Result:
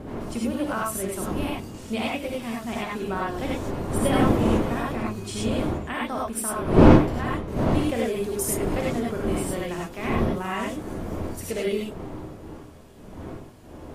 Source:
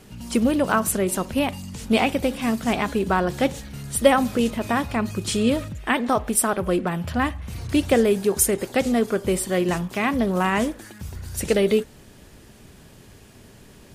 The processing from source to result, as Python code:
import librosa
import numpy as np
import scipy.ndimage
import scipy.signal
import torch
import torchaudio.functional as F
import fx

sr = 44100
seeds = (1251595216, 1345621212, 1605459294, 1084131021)

y = fx.dmg_wind(x, sr, seeds[0], corner_hz=380.0, level_db=-19.0)
y = fx.rev_gated(y, sr, seeds[1], gate_ms=120, shape='rising', drr_db=-3.5)
y = F.gain(torch.from_numpy(y), -11.5).numpy()